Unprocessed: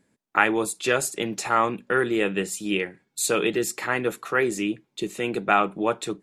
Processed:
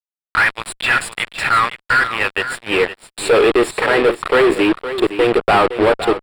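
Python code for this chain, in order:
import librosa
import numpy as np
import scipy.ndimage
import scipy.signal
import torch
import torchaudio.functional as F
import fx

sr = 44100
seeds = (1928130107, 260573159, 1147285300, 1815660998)

y = fx.filter_sweep_highpass(x, sr, from_hz=1700.0, to_hz=460.0, start_s=1.77, end_s=2.98, q=1.8)
y = fx.fuzz(y, sr, gain_db=33.0, gate_db=-32.0)
y = np.convolve(y, np.full(7, 1.0 / 7))[:len(y)]
y = y + 10.0 ** (-11.5 / 20.0) * np.pad(y, (int(514 * sr / 1000.0), 0))[:len(y)]
y = y * 10.0 ** (4.0 / 20.0)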